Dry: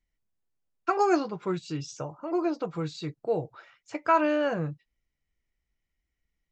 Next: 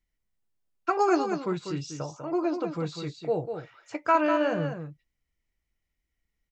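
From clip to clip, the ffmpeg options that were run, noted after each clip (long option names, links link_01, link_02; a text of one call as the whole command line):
ffmpeg -i in.wav -af "aecho=1:1:197:0.422" out.wav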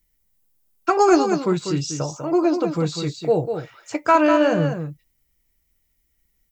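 ffmpeg -i in.wav -filter_complex "[0:a]aemphasis=mode=production:type=75fm,asplit=2[link_01][link_02];[link_02]asoftclip=type=hard:threshold=-19dB,volume=-9dB[link_03];[link_01][link_03]amix=inputs=2:normalize=0,tiltshelf=frequency=920:gain=3.5,volume=4.5dB" out.wav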